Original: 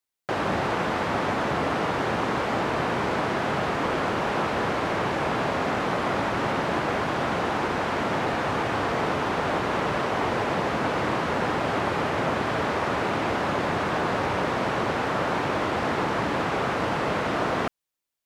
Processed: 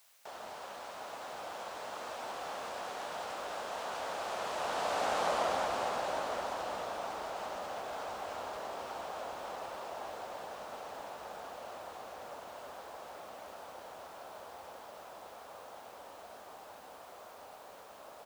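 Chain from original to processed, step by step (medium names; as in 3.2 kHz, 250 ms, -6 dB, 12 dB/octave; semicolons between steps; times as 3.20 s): Doppler pass-by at 5.28 s, 41 m/s, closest 19 m; graphic EQ 125/1000/2000/8000 Hz -11/-4/-9/+5 dB; in parallel at -3 dB: compressor with a negative ratio -46 dBFS; on the sum: added noise white -63 dBFS; resonant low shelf 470 Hz -10.5 dB, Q 1.5; on a send: delay 913 ms -9.5 dB; on the sum: trim -1.5 dB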